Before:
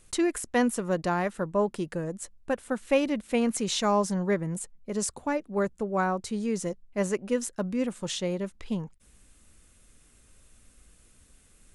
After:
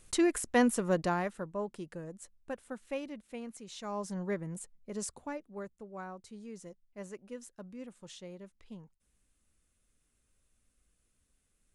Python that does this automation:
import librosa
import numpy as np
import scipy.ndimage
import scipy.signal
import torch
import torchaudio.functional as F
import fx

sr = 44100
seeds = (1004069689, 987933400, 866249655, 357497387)

y = fx.gain(x, sr, db=fx.line((0.98, -1.5), (1.55, -11.0), (2.58, -11.0), (3.67, -19.5), (4.19, -8.5), (5.12, -8.5), (5.73, -17.0)))